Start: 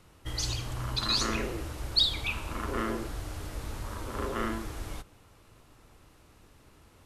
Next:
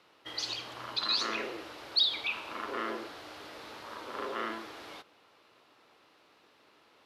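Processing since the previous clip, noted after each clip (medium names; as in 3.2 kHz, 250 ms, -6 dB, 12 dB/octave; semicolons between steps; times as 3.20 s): high-pass 390 Hz 12 dB/octave; resonant high shelf 5.8 kHz -10.5 dB, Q 1.5; in parallel at -1.5 dB: peak limiter -24 dBFS, peak gain reduction 11.5 dB; on the sum: trim -6 dB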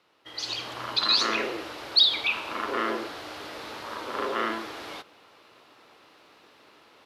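level rider gain up to 11 dB; trim -3.5 dB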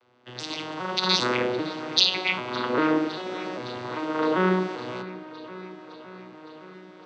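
vocoder on a broken chord major triad, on B2, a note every 396 ms; feedback echo behind a low-pass 561 ms, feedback 70%, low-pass 3.8 kHz, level -16 dB; trim +3.5 dB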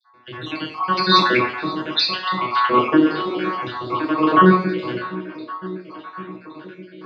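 random holes in the spectrogram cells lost 58%; small resonant body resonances 1.1/2.3 kHz, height 10 dB, ringing for 85 ms; reverberation RT60 0.55 s, pre-delay 3 ms, DRR -5.5 dB; trim -5.5 dB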